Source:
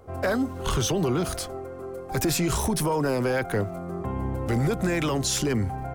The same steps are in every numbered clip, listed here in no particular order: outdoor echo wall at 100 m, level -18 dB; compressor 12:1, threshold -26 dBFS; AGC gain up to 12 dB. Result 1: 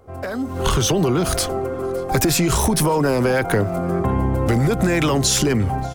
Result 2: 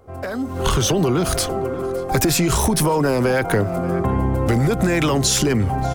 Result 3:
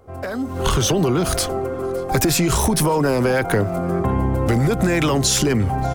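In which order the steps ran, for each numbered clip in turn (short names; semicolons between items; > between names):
compressor > AGC > outdoor echo; outdoor echo > compressor > AGC; compressor > outdoor echo > AGC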